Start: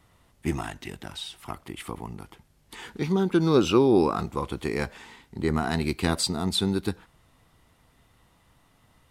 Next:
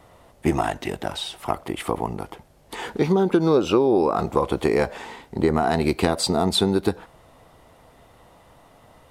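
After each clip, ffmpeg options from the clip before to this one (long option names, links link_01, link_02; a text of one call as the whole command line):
ffmpeg -i in.wav -af "equalizer=frequency=600:width=0.91:gain=12,acompressor=threshold=-21dB:ratio=6,volume=5.5dB" out.wav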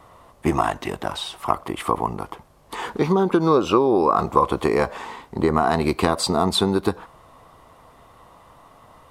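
ffmpeg -i in.wav -af "equalizer=frequency=1100:width_type=o:width=0.41:gain=10.5" out.wav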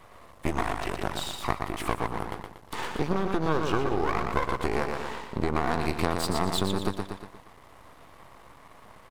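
ffmpeg -i in.wav -filter_complex "[0:a]asplit=2[link_01][link_02];[link_02]aecho=0:1:118|236|354|472|590:0.501|0.21|0.0884|0.0371|0.0156[link_03];[link_01][link_03]amix=inputs=2:normalize=0,acompressor=threshold=-26dB:ratio=2,aeval=exprs='max(val(0),0)':channel_layout=same,volume=1dB" out.wav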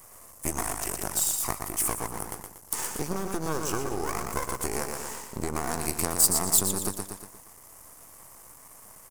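ffmpeg -i in.wav -af "aexciter=amount=15.7:drive=2.3:freq=5600,volume=-4.5dB" out.wav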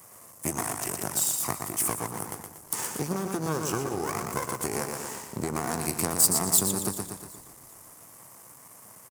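ffmpeg -i in.wav -filter_complex "[0:a]highpass=frequency=110:width=0.5412,highpass=frequency=110:width=1.3066,lowshelf=frequency=140:gain=8.5,asplit=4[link_01][link_02][link_03][link_04];[link_02]adelay=380,afreqshift=-33,volume=-20dB[link_05];[link_03]adelay=760,afreqshift=-66,volume=-28.9dB[link_06];[link_04]adelay=1140,afreqshift=-99,volume=-37.7dB[link_07];[link_01][link_05][link_06][link_07]amix=inputs=4:normalize=0" out.wav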